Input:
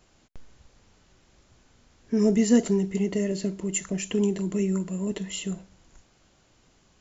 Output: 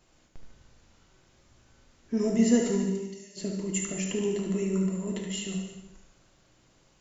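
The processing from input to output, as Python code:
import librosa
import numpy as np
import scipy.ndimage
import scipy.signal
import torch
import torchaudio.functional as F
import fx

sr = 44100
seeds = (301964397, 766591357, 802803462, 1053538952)

y = fx.bandpass_q(x, sr, hz=5300.0, q=2.4, at=(2.86, 3.36), fade=0.02)
y = fx.echo_feedback(y, sr, ms=74, feedback_pct=51, wet_db=-8.0)
y = fx.rev_gated(y, sr, seeds[0], gate_ms=400, shape='falling', drr_db=2.5)
y = y * 10.0 ** (-4.0 / 20.0)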